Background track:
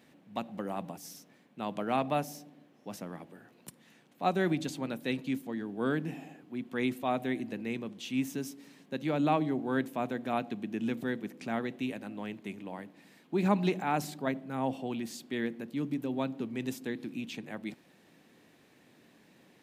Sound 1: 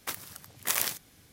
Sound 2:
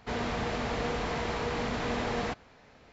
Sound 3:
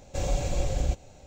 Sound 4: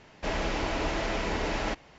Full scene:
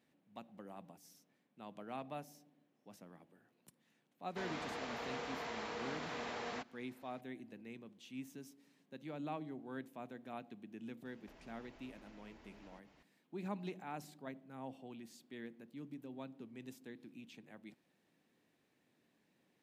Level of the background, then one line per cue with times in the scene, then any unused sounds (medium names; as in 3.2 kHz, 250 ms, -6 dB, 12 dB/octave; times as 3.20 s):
background track -15.5 dB
4.29 s: add 2 -9 dB + high-pass 460 Hz 6 dB/octave
11.05 s: add 4 -14.5 dB + compression 16:1, threshold -43 dBFS
not used: 1, 3